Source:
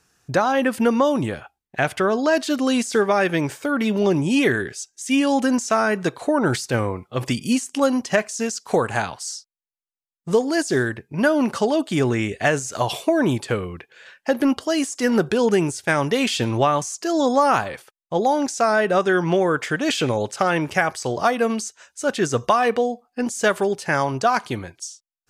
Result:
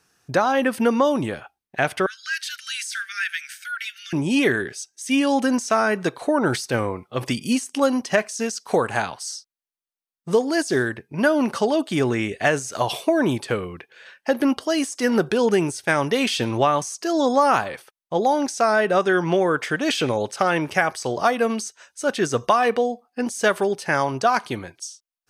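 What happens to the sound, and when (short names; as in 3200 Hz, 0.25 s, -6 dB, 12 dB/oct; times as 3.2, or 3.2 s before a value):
2.06–4.13 steep high-pass 1400 Hz 96 dB/oct
whole clip: low shelf 95 Hz -9.5 dB; notch 7200 Hz, Q 7.8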